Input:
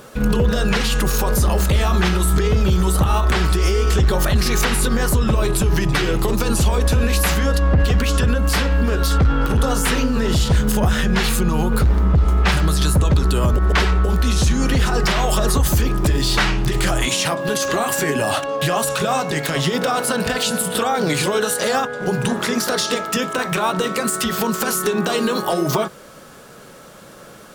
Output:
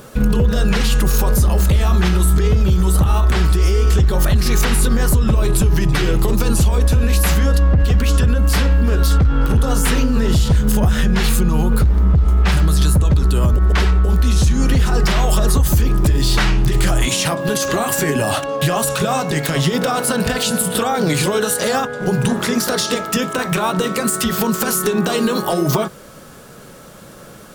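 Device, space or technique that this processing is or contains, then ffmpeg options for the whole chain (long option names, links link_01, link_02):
ASMR close-microphone chain: -af "lowshelf=frequency=230:gain=7.5,acompressor=threshold=-10dB:ratio=6,highshelf=frequency=8100:gain=5"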